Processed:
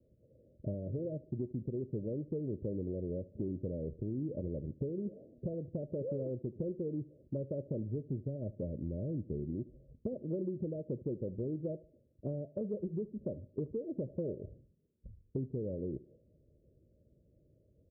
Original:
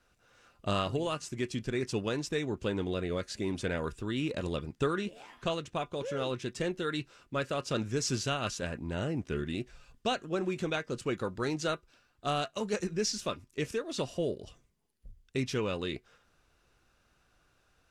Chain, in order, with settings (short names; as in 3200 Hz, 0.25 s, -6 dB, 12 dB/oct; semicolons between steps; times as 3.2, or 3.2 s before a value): Chebyshev low-pass 620 Hz, order 8; low shelf 170 Hz +8 dB; compressor 6:1, threshold -39 dBFS, peak gain reduction 14.5 dB; HPF 83 Hz; feedback echo 74 ms, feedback 39%, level -19 dB; gain +4.5 dB